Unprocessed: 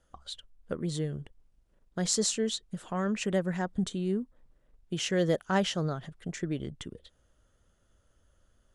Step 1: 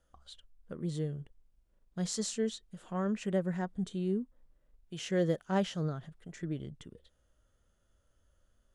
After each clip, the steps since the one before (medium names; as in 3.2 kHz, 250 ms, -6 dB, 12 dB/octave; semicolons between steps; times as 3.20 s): harmonic-percussive split percussive -9 dB; trim -2 dB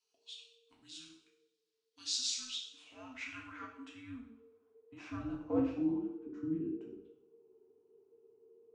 frequency shift -470 Hz; band-pass sweep 4.5 kHz -> 360 Hz, 2.40–5.91 s; two-slope reverb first 0.62 s, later 1.8 s, from -26 dB, DRR -2.5 dB; trim +4 dB